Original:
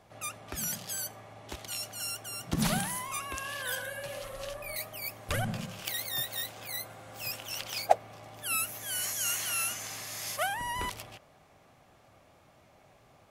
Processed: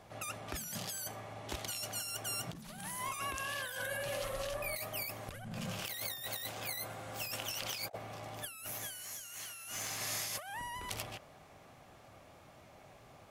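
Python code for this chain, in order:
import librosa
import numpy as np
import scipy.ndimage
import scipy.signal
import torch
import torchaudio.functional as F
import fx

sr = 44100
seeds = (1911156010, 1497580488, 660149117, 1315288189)

y = fx.over_compress(x, sr, threshold_db=-40.0, ratio=-1.0)
y = fx.tube_stage(y, sr, drive_db=27.0, bias=0.55, at=(8.45, 10.01))
y = F.gain(torch.from_numpy(y), -1.5).numpy()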